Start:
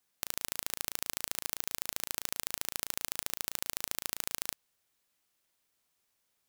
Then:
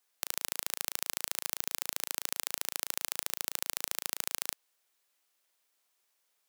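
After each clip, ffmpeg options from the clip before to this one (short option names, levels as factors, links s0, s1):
-af "highpass=400,volume=1.19"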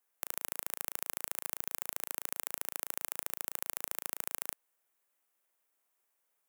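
-af "equalizer=f=4400:w=0.92:g=-11.5,volume=0.891"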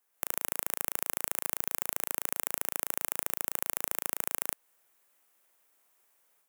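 -af "dynaudnorm=f=100:g=3:m=2.24,asoftclip=type=tanh:threshold=0.562,volume=1.41"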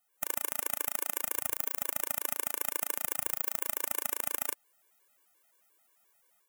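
-af "afftfilt=real='re*gt(sin(2*PI*5.7*pts/sr)*(1-2*mod(floor(b*sr/1024/300),2)),0)':imag='im*gt(sin(2*PI*5.7*pts/sr)*(1-2*mod(floor(b*sr/1024/300),2)),0)':win_size=1024:overlap=0.75,volume=1.5"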